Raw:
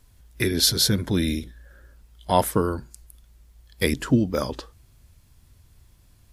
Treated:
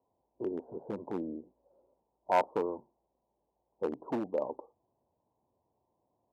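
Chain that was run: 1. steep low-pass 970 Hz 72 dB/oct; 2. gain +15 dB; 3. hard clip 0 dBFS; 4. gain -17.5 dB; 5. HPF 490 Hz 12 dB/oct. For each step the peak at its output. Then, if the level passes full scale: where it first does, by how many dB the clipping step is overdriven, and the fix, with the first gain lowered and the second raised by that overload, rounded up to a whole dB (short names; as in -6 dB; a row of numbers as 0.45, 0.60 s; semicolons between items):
-7.0, +8.0, 0.0, -17.5, -13.5 dBFS; step 2, 8.0 dB; step 2 +7 dB, step 4 -9.5 dB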